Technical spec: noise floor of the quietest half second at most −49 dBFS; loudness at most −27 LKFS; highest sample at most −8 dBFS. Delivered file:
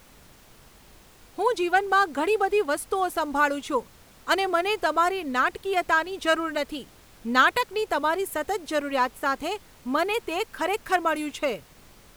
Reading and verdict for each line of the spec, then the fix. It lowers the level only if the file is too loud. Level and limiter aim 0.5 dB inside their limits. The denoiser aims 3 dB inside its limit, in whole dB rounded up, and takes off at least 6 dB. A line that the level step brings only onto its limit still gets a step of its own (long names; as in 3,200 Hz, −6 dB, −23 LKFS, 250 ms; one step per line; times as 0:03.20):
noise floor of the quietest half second −52 dBFS: in spec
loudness −25.0 LKFS: out of spec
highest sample −5.5 dBFS: out of spec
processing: level −2.5 dB
brickwall limiter −8.5 dBFS